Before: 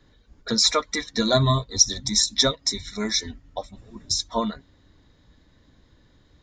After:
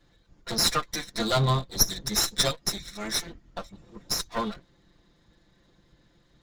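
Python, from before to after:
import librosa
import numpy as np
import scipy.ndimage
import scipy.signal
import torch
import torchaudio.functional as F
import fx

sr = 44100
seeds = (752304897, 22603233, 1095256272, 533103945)

y = fx.lower_of_two(x, sr, delay_ms=5.8)
y = y * 10.0 ** (-2.5 / 20.0)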